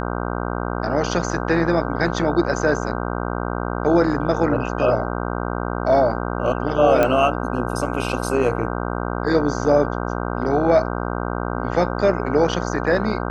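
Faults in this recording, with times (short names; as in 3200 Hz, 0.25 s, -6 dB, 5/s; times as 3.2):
buzz 60 Hz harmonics 26 -25 dBFS
7.03 pop -6 dBFS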